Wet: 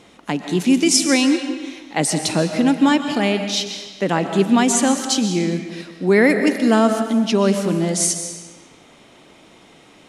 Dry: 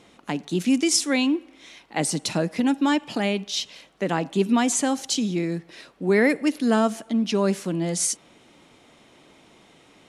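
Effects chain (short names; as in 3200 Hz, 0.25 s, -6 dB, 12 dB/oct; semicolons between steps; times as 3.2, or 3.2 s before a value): digital reverb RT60 1.3 s, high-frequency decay 0.9×, pre-delay 90 ms, DRR 7 dB; gain +5 dB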